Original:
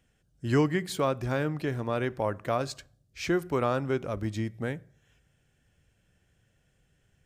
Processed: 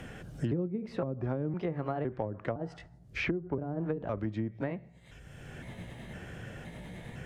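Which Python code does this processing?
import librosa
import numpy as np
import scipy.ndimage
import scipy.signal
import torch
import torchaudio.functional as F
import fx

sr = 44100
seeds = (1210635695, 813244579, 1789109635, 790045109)

y = fx.pitch_trill(x, sr, semitones=3.0, every_ms=511)
y = fx.env_lowpass_down(y, sr, base_hz=330.0, full_db=-23.5)
y = fx.band_squash(y, sr, depth_pct=100)
y = y * librosa.db_to_amplitude(-2.0)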